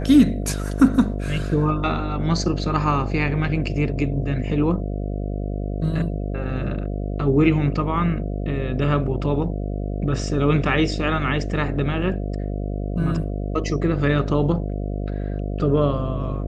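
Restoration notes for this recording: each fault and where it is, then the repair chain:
buzz 50 Hz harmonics 14 -26 dBFS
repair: de-hum 50 Hz, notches 14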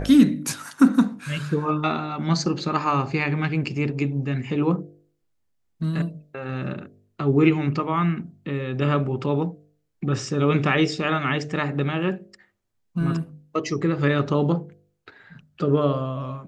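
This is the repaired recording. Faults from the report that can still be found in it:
nothing left

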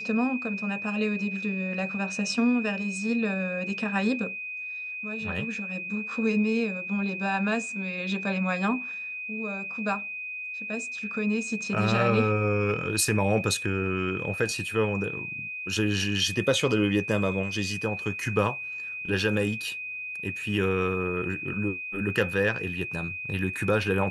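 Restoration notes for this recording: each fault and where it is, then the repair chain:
whine 2.5 kHz -33 dBFS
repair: band-stop 2.5 kHz, Q 30

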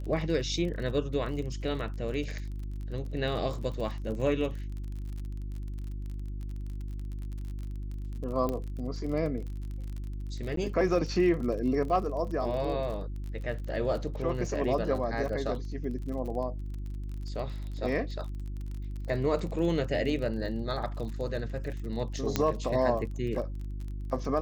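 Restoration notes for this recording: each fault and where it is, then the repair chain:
crackle 33 per s -37 dBFS
hum 50 Hz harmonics 7 -36 dBFS
8.49 s: pop -19 dBFS
10.56–10.57 s: dropout 13 ms
22.36 s: pop -11 dBFS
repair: de-click; de-hum 50 Hz, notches 7; interpolate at 10.56 s, 13 ms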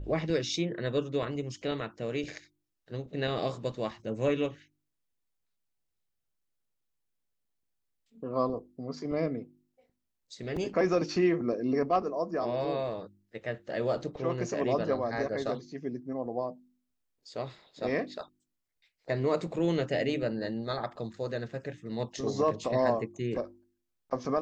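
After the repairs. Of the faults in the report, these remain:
8.49 s: pop

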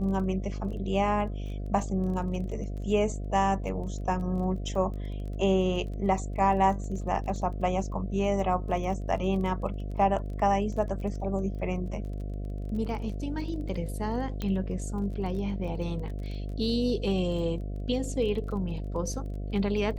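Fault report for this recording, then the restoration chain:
buzz 50 Hz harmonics 14 -34 dBFS
crackle 20 per s -38 dBFS
14.42 s: pop -19 dBFS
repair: de-click; de-hum 50 Hz, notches 14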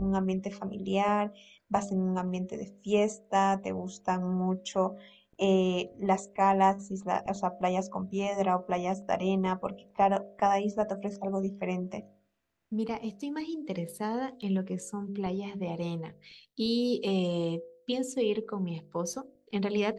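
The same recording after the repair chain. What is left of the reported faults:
14.42 s: pop

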